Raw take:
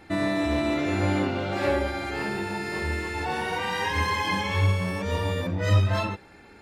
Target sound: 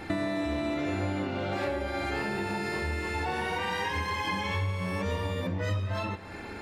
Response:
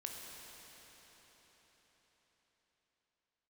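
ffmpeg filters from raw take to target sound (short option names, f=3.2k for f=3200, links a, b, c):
-filter_complex "[0:a]acompressor=threshold=-38dB:ratio=8,asplit=2[a][b];[1:a]atrim=start_sample=2205,lowpass=5.1k[c];[b][c]afir=irnorm=-1:irlink=0,volume=-9.5dB[d];[a][d]amix=inputs=2:normalize=0,volume=8dB"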